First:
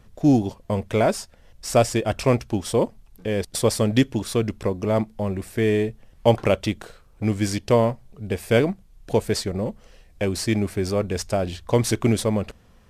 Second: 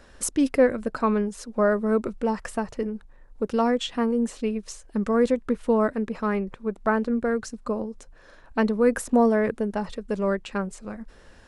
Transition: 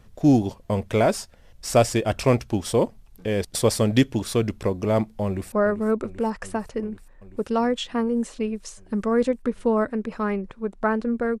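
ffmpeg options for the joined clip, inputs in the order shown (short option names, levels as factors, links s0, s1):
-filter_complex "[0:a]apad=whole_dur=11.4,atrim=end=11.4,atrim=end=5.522[s0];[1:a]atrim=start=1.548:end=7.43[s1];[s0][s1]acrossfade=d=0.004:c1=hsin:c2=hsin,asplit=2[s2][s3];[s3]afade=t=in:st=5.26:d=0.01,afade=t=out:st=5.52:d=0.01,aecho=0:1:390|780|1170|1560|1950|2340|2730|3120|3510|3900|4290|4680:0.237137|0.18971|0.151768|0.121414|0.0971315|0.0777052|0.0621641|0.0497313|0.039785|0.031828|0.0254624|0.0203699[s4];[s2][s4]amix=inputs=2:normalize=0"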